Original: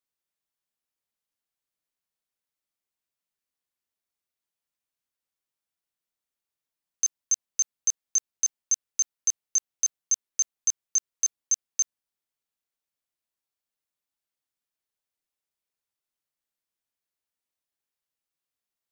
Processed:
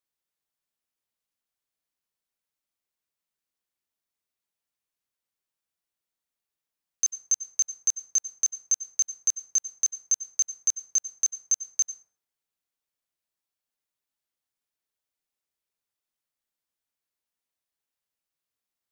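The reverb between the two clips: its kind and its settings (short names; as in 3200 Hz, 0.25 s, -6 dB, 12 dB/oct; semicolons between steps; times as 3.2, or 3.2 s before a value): plate-style reverb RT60 0.55 s, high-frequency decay 0.5×, pre-delay 85 ms, DRR 15.5 dB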